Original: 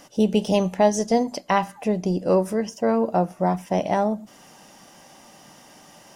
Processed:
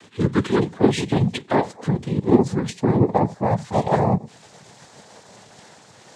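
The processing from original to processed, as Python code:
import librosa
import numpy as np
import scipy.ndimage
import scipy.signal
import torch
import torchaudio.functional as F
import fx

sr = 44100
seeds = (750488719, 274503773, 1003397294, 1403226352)

y = fx.pitch_glide(x, sr, semitones=-12.0, runs='ending unshifted')
y = y + 0.73 * np.pad(y, (int(5.8 * sr / 1000.0), 0))[:len(y)]
y = fx.noise_vocoder(y, sr, seeds[0], bands=6)
y = F.gain(torch.from_numpy(y), 2.0).numpy()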